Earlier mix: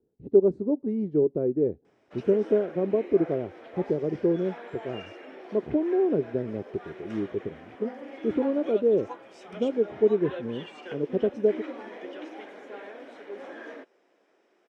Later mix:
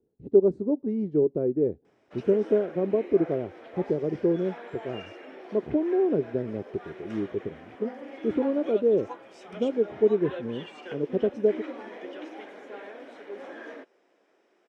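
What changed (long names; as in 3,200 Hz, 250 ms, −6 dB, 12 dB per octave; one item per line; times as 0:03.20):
background: add high-shelf EQ 7,200 Hz −6 dB
master: add high-shelf EQ 7,800 Hz +7 dB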